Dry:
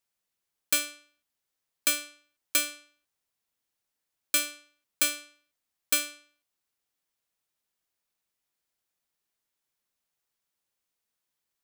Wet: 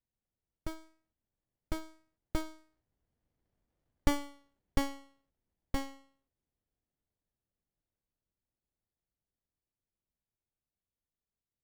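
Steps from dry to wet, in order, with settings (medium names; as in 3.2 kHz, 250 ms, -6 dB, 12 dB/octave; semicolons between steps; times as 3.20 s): Doppler pass-by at 3.83 s, 29 m/s, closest 29 m; RIAA curve playback; sliding maximum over 33 samples; trim +7.5 dB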